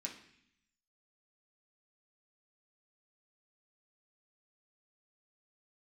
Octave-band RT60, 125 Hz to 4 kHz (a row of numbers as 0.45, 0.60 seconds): 1.0, 1.0, 0.65, 0.65, 0.90, 0.85 seconds